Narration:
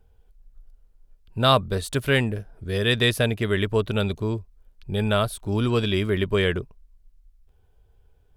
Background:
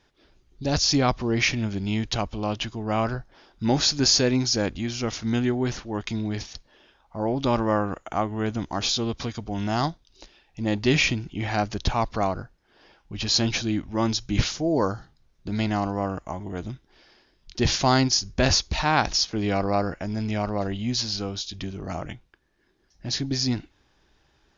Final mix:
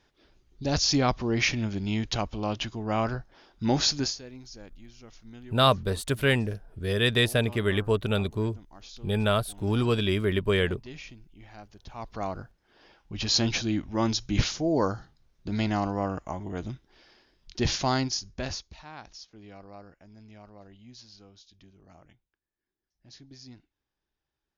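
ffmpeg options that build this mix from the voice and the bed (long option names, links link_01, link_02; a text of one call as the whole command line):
ffmpeg -i stem1.wav -i stem2.wav -filter_complex "[0:a]adelay=4150,volume=-2.5dB[link_01];[1:a]volume=18dB,afade=type=out:start_time=3.94:duration=0.22:silence=0.1,afade=type=in:start_time=11.88:duration=0.8:silence=0.0944061,afade=type=out:start_time=17.34:duration=1.43:silence=0.0891251[link_02];[link_01][link_02]amix=inputs=2:normalize=0" out.wav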